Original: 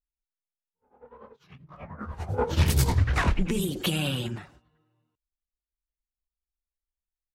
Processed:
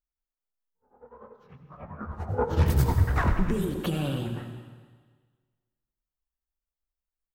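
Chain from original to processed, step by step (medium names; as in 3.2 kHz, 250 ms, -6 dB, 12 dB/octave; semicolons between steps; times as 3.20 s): high-order bell 5.1 kHz -10.5 dB 2.8 oct; algorithmic reverb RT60 1.5 s, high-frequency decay 1×, pre-delay 50 ms, DRR 7 dB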